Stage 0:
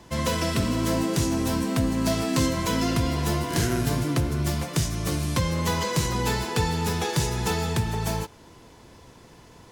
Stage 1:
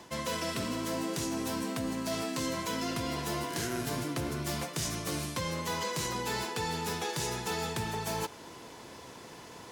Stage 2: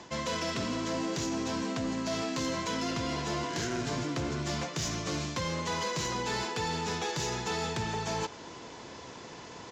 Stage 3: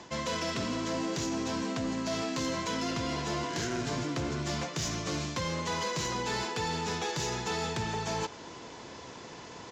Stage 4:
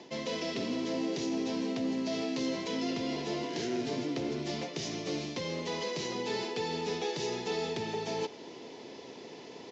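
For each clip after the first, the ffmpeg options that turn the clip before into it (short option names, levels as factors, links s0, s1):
-af "highpass=f=310:p=1,areverse,acompressor=threshold=0.0158:ratio=6,areverse,volume=1.68"
-af "aresample=16000,acrusher=bits=4:mode=log:mix=0:aa=0.000001,aresample=44100,asoftclip=type=tanh:threshold=0.0473,volume=1.33"
-af anull
-af "highpass=180,equalizer=f=260:t=q:w=4:g=4,equalizer=f=410:t=q:w=4:g=7,equalizer=f=1100:t=q:w=4:g=-9,equalizer=f=1500:t=q:w=4:g=-10,lowpass=f=5700:w=0.5412,lowpass=f=5700:w=1.3066,volume=0.841"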